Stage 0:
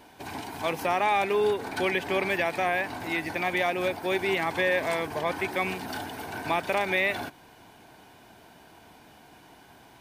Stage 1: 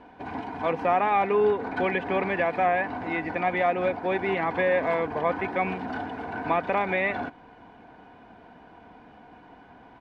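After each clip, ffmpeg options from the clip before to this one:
-af "lowpass=1.7k,aecho=1:1:4.1:0.37,volume=3dB"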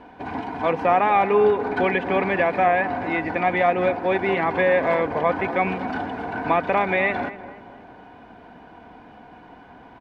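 -filter_complex "[0:a]asplit=2[a][b];[b]adelay=240,lowpass=f=1.5k:p=1,volume=-13dB,asplit=2[c][d];[d]adelay=240,lowpass=f=1.5k:p=1,volume=0.47,asplit=2[e][f];[f]adelay=240,lowpass=f=1.5k:p=1,volume=0.47,asplit=2[g][h];[h]adelay=240,lowpass=f=1.5k:p=1,volume=0.47,asplit=2[i][j];[j]adelay=240,lowpass=f=1.5k:p=1,volume=0.47[k];[a][c][e][g][i][k]amix=inputs=6:normalize=0,volume=4.5dB"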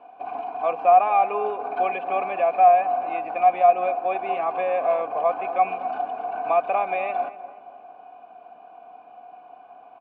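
-filter_complex "[0:a]asplit=3[a][b][c];[a]bandpass=f=730:t=q:w=8,volume=0dB[d];[b]bandpass=f=1.09k:t=q:w=8,volume=-6dB[e];[c]bandpass=f=2.44k:t=q:w=8,volume=-9dB[f];[d][e][f]amix=inputs=3:normalize=0,volume=6dB"

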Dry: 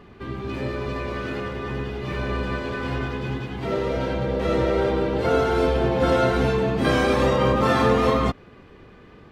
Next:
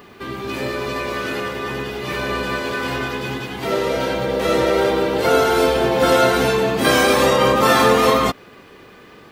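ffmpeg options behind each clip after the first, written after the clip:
-af "aemphasis=mode=production:type=bsi,volume=6.5dB"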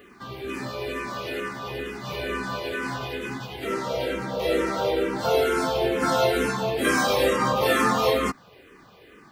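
-filter_complex "[0:a]asplit=2[a][b];[b]afreqshift=-2.2[c];[a][c]amix=inputs=2:normalize=1,volume=-4dB"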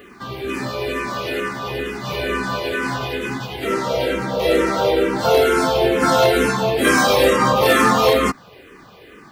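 -af "aeval=exprs='0.224*(abs(mod(val(0)/0.224+3,4)-2)-1)':c=same,volume=7dB"

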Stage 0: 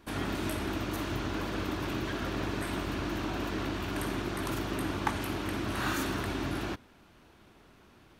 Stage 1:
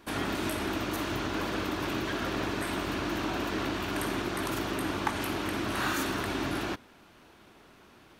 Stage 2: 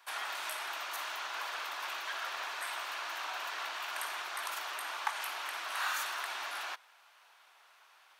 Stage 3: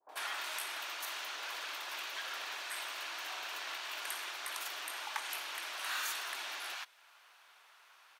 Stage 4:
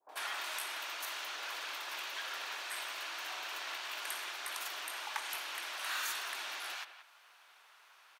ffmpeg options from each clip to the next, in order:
-filter_complex "[0:a]lowshelf=f=160:g=-8.5,asplit=2[a][b];[b]alimiter=level_in=2dB:limit=-24dB:level=0:latency=1:release=131,volume=-2dB,volume=-1dB[c];[a][c]amix=inputs=2:normalize=0,volume=-1.5dB"
-af "highpass=f=780:w=0.5412,highpass=f=780:w=1.3066,volume=-2.5dB"
-filter_complex "[0:a]acrossover=split=760[a][b];[b]adelay=90[c];[a][c]amix=inputs=2:normalize=0,adynamicequalizer=threshold=0.002:dfrequency=1200:dqfactor=1:tfrequency=1200:tqfactor=1:attack=5:release=100:ratio=0.375:range=3:mode=cutabove:tftype=bell,volume=1dB"
-filter_complex "[0:a]asplit=2[a][b];[b]adelay=180,highpass=300,lowpass=3.4k,asoftclip=type=hard:threshold=-30dB,volume=-11dB[c];[a][c]amix=inputs=2:normalize=0"

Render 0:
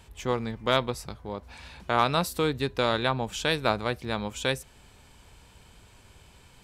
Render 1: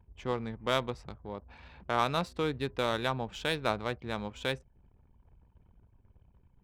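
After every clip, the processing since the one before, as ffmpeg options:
-af "adynamicsmooth=sensitivity=3:basefreq=3.2k,anlmdn=0.00158,volume=-5dB"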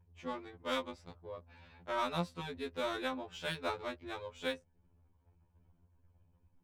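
-af "afftfilt=real='re*2*eq(mod(b,4),0)':imag='im*2*eq(mod(b,4),0)':win_size=2048:overlap=0.75,volume=-3.5dB"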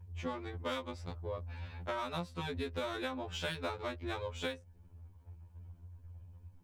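-af "equalizer=f=88:t=o:w=0.35:g=12.5,acompressor=threshold=-41dB:ratio=12,volume=7dB"

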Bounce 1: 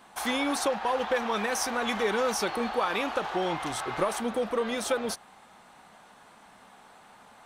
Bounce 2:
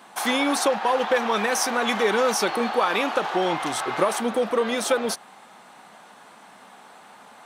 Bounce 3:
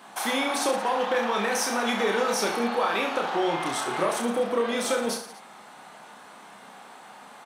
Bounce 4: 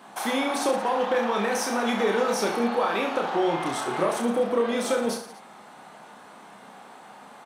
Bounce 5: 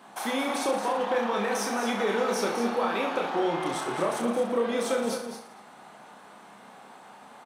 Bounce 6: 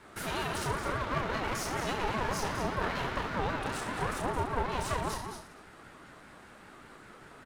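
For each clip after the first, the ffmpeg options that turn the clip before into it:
-af "highpass=170,volume=6dB"
-filter_complex "[0:a]asplit=2[a][b];[b]acompressor=threshold=-31dB:ratio=6,volume=1dB[c];[a][c]amix=inputs=2:normalize=0,aecho=1:1:30|67.5|114.4|173|246.2:0.631|0.398|0.251|0.158|0.1,volume=-7.5dB"
-af "tiltshelf=f=970:g=3"
-af "aecho=1:1:217:0.376,volume=-3dB"
-af "aeval=exprs='clip(val(0),-1,0.02)':c=same,aeval=exprs='val(0)*sin(2*PI*530*n/s+530*0.25/5.1*sin(2*PI*5.1*n/s))':c=same"

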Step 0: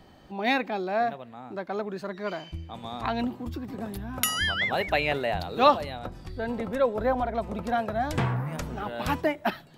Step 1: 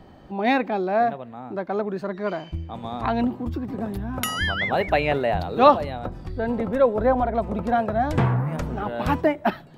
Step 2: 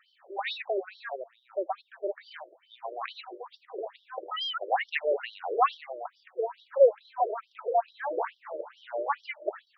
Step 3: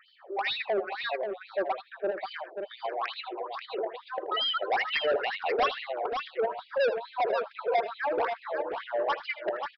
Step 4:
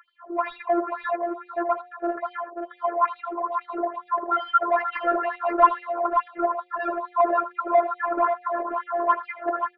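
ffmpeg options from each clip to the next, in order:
-af "highshelf=f=2.1k:g=-11,volume=6.5dB"
-af "afftfilt=real='re*between(b*sr/1024,430*pow(4300/430,0.5+0.5*sin(2*PI*2.3*pts/sr))/1.41,430*pow(4300/430,0.5+0.5*sin(2*PI*2.3*pts/sr))*1.41)':imag='im*between(b*sr/1024,430*pow(4300/430,0.5+0.5*sin(2*PI*2.3*pts/sr))/1.41,430*pow(4300/430,0.5+0.5*sin(2*PI*2.3*pts/sr))*1.41)':win_size=1024:overlap=0.75"
-af "aresample=11025,asoftclip=type=tanh:threshold=-28dB,aresample=44100,aecho=1:1:80|534:0.178|0.473,volume=5.5dB"
-af "lowpass=f=1.2k:t=q:w=4.9,afftfilt=real='hypot(re,im)*cos(PI*b)':imag='0':win_size=512:overlap=0.75,bandreject=f=178.2:t=h:w=4,bandreject=f=356.4:t=h:w=4,bandreject=f=534.6:t=h:w=4,bandreject=f=712.8:t=h:w=4,volume=5.5dB"

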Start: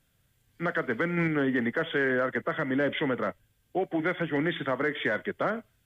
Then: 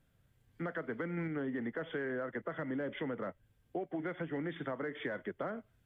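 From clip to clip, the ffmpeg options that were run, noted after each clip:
-af "highshelf=f=2.1k:g=-11.5,acompressor=threshold=-38dB:ratio=3"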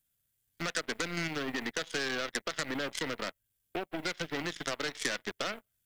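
-af "aeval=exprs='0.0501*(cos(1*acos(clip(val(0)/0.0501,-1,1)))-cos(1*PI/2))+0.00631*(cos(7*acos(clip(val(0)/0.0501,-1,1)))-cos(7*PI/2))+0.00282*(cos(8*acos(clip(val(0)/0.0501,-1,1)))-cos(8*PI/2))':c=same,highshelf=f=3.1k:g=8.5,crystalizer=i=5.5:c=0"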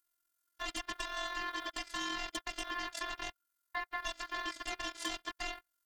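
-af "afftfilt=real='hypot(re,im)*cos(PI*b)':imag='0':win_size=512:overlap=0.75,asoftclip=type=tanh:threshold=-23dB,aeval=exprs='val(0)*sin(2*PI*1400*n/s)':c=same,volume=3dB"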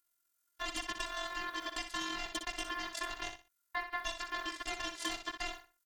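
-af "aecho=1:1:61|122|183:0.398|0.0955|0.0229,volume=1dB"

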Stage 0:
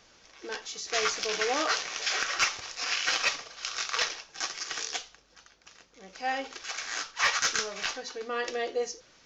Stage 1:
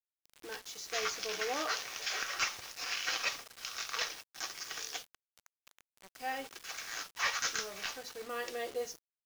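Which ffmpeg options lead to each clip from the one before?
-af "acrusher=bits=6:mix=0:aa=0.000001,volume=-7dB"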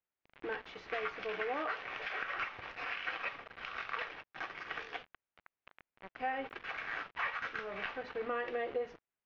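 -af "acompressor=threshold=-40dB:ratio=6,lowpass=f=2.5k:w=0.5412,lowpass=f=2.5k:w=1.3066,volume=7.5dB"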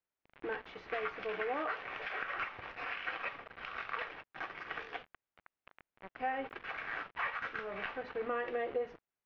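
-af "highshelf=f=4.7k:g=-11.5,volume=1dB"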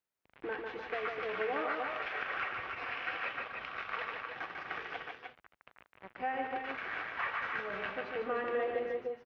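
-af "highpass=45,aecho=1:1:147|299|307:0.596|0.447|0.335"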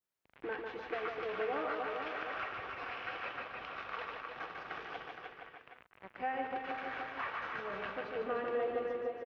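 -filter_complex "[0:a]asplit=2[a][b];[b]adelay=466.5,volume=-7dB,highshelf=f=4k:g=-10.5[c];[a][c]amix=inputs=2:normalize=0,adynamicequalizer=threshold=0.00316:dfrequency=2000:dqfactor=1.5:tfrequency=2000:tqfactor=1.5:attack=5:release=100:ratio=0.375:range=3:mode=cutabove:tftype=bell,volume=-1dB"

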